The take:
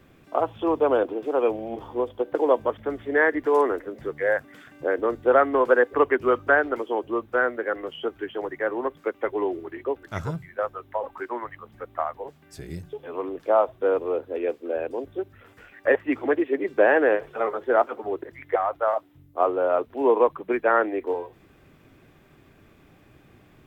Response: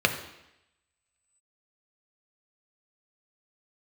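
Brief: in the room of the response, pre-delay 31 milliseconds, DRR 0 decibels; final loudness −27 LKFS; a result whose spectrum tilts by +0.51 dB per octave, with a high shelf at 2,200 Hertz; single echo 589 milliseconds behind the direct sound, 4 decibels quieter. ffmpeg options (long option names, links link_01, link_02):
-filter_complex "[0:a]highshelf=frequency=2200:gain=4.5,aecho=1:1:589:0.631,asplit=2[link_01][link_02];[1:a]atrim=start_sample=2205,adelay=31[link_03];[link_02][link_03]afir=irnorm=-1:irlink=0,volume=-15dB[link_04];[link_01][link_04]amix=inputs=2:normalize=0,volume=-7dB"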